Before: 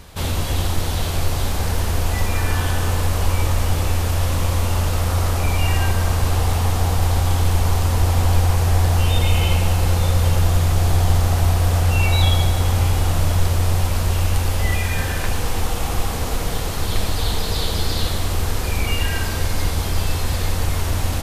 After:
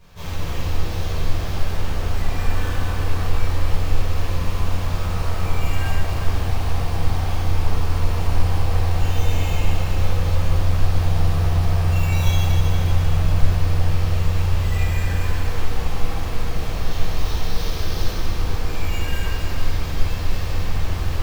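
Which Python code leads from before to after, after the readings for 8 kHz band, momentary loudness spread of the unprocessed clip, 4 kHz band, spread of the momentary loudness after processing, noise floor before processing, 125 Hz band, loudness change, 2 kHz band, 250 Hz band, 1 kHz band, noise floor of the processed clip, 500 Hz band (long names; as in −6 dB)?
−10.0 dB, 6 LU, −6.5 dB, 7 LU, −23 dBFS, −3.0 dB, −3.5 dB, −4.5 dB, −3.0 dB, −4.5 dB, −24 dBFS, −4.0 dB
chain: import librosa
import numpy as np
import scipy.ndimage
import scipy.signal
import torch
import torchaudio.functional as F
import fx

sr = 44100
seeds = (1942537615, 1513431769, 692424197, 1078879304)

y = fx.sample_hold(x, sr, seeds[0], rate_hz=9700.0, jitter_pct=0)
y = fx.echo_split(y, sr, split_hz=530.0, low_ms=319, high_ms=237, feedback_pct=52, wet_db=-7.5)
y = fx.room_shoebox(y, sr, seeds[1], volume_m3=820.0, walls='mixed', distance_m=5.4)
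y = y * 10.0 ** (-17.0 / 20.0)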